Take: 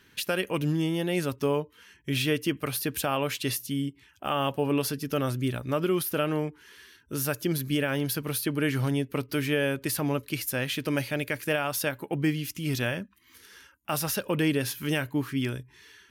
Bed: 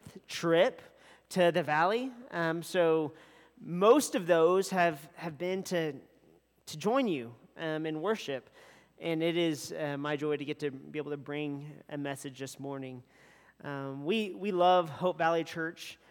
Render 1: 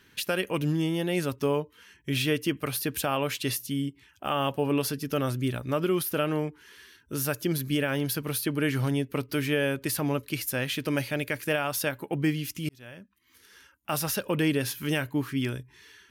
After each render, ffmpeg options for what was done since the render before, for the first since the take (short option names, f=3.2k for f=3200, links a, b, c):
-filter_complex "[0:a]asplit=2[a][b];[a]atrim=end=12.69,asetpts=PTS-STARTPTS,afade=t=out:st=12.686:d=0.004:c=hsin[c];[b]atrim=start=12.69,asetpts=PTS-STARTPTS,afade=t=in:d=1.24[d];[c][d]concat=n=2:v=0:a=1"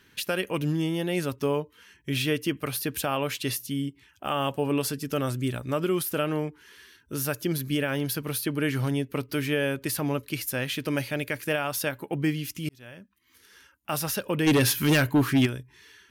-filter_complex "[0:a]asettb=1/sr,asplit=3[a][b][c];[a]atrim=end=4.284[d];[b]atrim=start=4.28:end=6.22,asetpts=PTS-STARTPTS,afade=t=in:d=0.004:c=qsin,afade=t=out:st=1.936:d=0.004:c=qsin,equalizer=f=7.8k:w=3.6:g=6.5[e];[c]atrim=start=6.216[f];[d][e]acrossfade=d=0.004:c1=hsin:c2=qsin[g];[g][f]acrossfade=d=0.004:c1=qsin:c2=hsin,asplit=3[h][i][j];[h]afade=t=out:st=14.46:d=0.02[k];[i]aeval=exprs='0.168*sin(PI/2*2*val(0)/0.168)':c=same,afade=t=in:st=14.46:d=0.02,afade=t=out:st=15.45:d=0.02[l];[j]afade=t=in:st=15.45:d=0.02[m];[k][l][m]amix=inputs=3:normalize=0"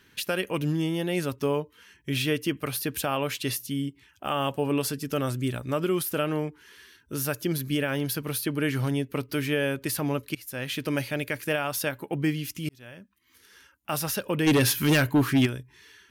-filter_complex "[0:a]asplit=2[a][b];[a]atrim=end=10.35,asetpts=PTS-STARTPTS,afade=t=out:st=10.346:d=0.004:c=hsin:silence=0.112202[c];[b]atrim=start=10.35,asetpts=PTS-STARTPTS,afade=t=in:d=0.42:silence=0.112202[d];[c][d]concat=n=2:v=0:a=1"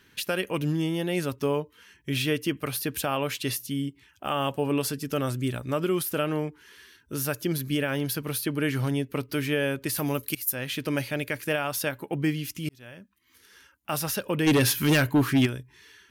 -filter_complex "[0:a]asplit=3[a][b][c];[a]afade=t=out:st=9.96:d=0.02[d];[b]aemphasis=mode=production:type=50fm,afade=t=in:st=9.96:d=0.02,afade=t=out:st=10.53:d=0.02[e];[c]afade=t=in:st=10.53:d=0.02[f];[d][e][f]amix=inputs=3:normalize=0"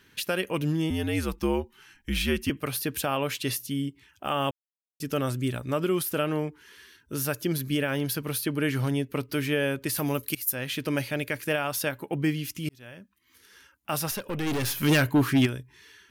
-filter_complex "[0:a]asettb=1/sr,asplit=3[a][b][c];[a]atrim=end=0.904[d];[b]atrim=start=0.9:end=2.5,asetpts=PTS-STARTPTS,afade=t=in:d=0.004:c=qsin,afade=t=out:st=1.596:d=0.004:c=qsin,afreqshift=-76[e];[c]atrim=start=2.496[f];[d][e]acrossfade=d=0.004:c1=hsin:c2=qsin[g];[g][f]acrossfade=d=0.004:c1=qsin:c2=hsin,asettb=1/sr,asplit=3[h][i][j];[h]atrim=end=14.114[k];[i]atrim=start=14.11:end=14.83,asetpts=PTS-STARTPTS,afade=t=in:d=0.004:c=qsin,afade=t=out:st=0.716:d=0.004:c=qsin,aeval=exprs='(tanh(20*val(0)+0.45)-tanh(0.45))/20':c=same[l];[j]atrim=start=14.826[m];[k][l]acrossfade=d=0.004:c1=hsin:c2=qsin[n];[n][m]acrossfade=d=0.004:c1=qsin:c2=hsin,asplit=3[o][p][q];[o]atrim=end=4.51,asetpts=PTS-STARTPTS,afade=t=out:st=4.506:d=0.004:c=hsin[r];[p]atrim=start=4.51:end=5,asetpts=PTS-STARTPTS,volume=0[s];[q]atrim=start=5,asetpts=PTS-STARTPTS,afade=t=in:d=0.004:c=hsin[t];[r][s][t]concat=n=3:v=0:a=1"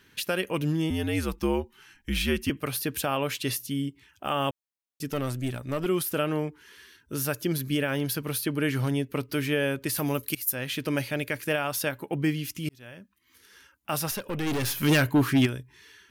-filter_complex "[0:a]asettb=1/sr,asplit=3[a][b][c];[a]atrim=end=5.114[d];[b]atrim=start=5.11:end=5.86,asetpts=PTS-STARTPTS,afade=t=in:d=0.004:c=qsin,afade=t=out:st=0.746:d=0.004:c=qsin,aeval=exprs='(tanh(10*val(0)+0.45)-tanh(0.45))/10':c=same[e];[c]atrim=start=5.856[f];[d][e]acrossfade=d=0.004:c1=hsin:c2=qsin[g];[g][f]acrossfade=d=0.004:c1=qsin:c2=hsin"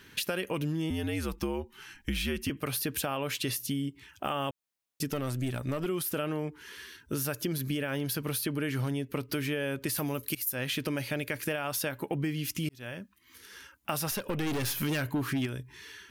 -filter_complex "[0:a]asplit=2[a][b];[b]alimiter=limit=-23dB:level=0:latency=1:release=17,volume=-2dB[c];[a][c]amix=inputs=2:normalize=0,acompressor=threshold=-29dB:ratio=6"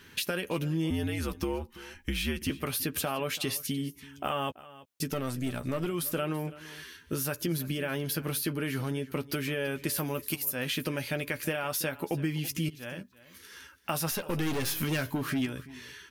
-filter_complex "[0:a]asplit=2[a][b];[b]adelay=12,volume=-8dB[c];[a][c]amix=inputs=2:normalize=0,aecho=1:1:333:0.119"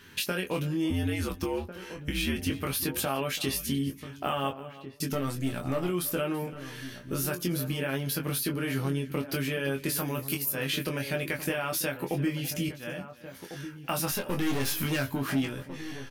-filter_complex "[0:a]asplit=2[a][b];[b]adelay=22,volume=-4.5dB[c];[a][c]amix=inputs=2:normalize=0,asplit=2[d][e];[e]adelay=1399,volume=-11dB,highshelf=f=4k:g=-31.5[f];[d][f]amix=inputs=2:normalize=0"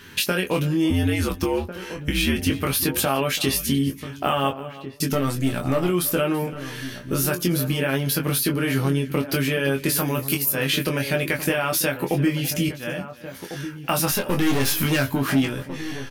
-af "volume=8dB"